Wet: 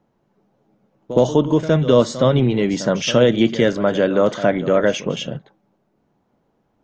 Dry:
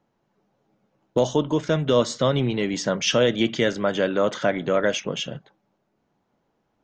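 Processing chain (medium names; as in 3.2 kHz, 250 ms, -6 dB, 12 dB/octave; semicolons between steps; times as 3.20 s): tilt shelf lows +3.5 dB; pre-echo 66 ms -14 dB; trim +3.5 dB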